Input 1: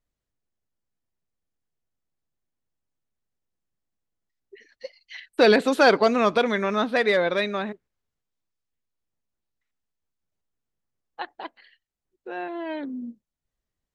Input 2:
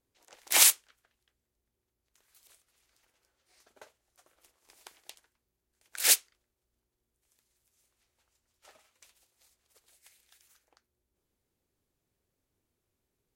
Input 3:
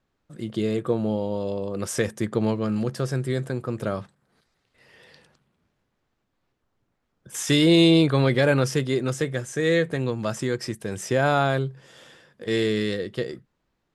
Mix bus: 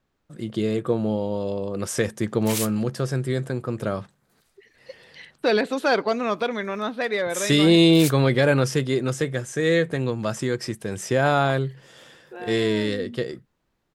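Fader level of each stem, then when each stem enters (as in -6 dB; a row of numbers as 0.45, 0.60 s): -4.0, -8.5, +1.0 dB; 0.05, 1.95, 0.00 s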